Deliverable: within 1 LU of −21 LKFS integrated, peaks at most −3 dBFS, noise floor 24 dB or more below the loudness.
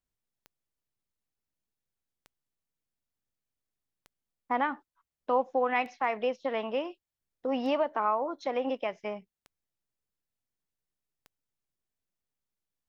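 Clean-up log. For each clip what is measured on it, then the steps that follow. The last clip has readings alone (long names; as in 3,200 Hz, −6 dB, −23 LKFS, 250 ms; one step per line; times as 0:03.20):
number of clicks 7; integrated loudness −31.0 LKFS; sample peak −15.0 dBFS; target loudness −21.0 LKFS
→ click removal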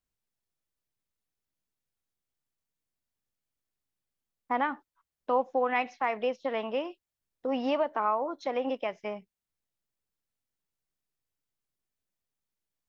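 number of clicks 0; integrated loudness −31.0 LKFS; sample peak −15.0 dBFS; target loudness −21.0 LKFS
→ level +10 dB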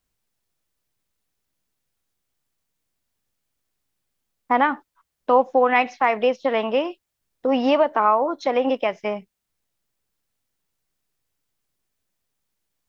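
integrated loudness −21.0 LKFS; sample peak −5.0 dBFS; background noise floor −80 dBFS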